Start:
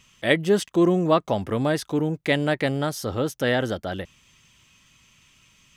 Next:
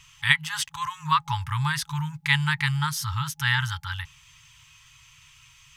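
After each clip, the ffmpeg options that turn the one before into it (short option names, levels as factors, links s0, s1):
-af "afftfilt=real='re*(1-between(b*sr/4096,160,830))':imag='im*(1-between(b*sr/4096,160,830))':win_size=4096:overlap=0.75,volume=1.58"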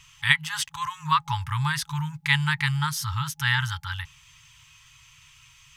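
-af anull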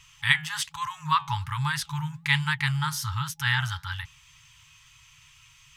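-af "flanger=delay=3:depth=8:regen=-80:speed=1.2:shape=sinusoidal,volume=1.41"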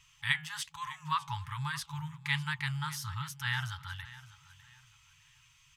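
-af "aecho=1:1:602|1204|1806:0.133|0.04|0.012,volume=0.376"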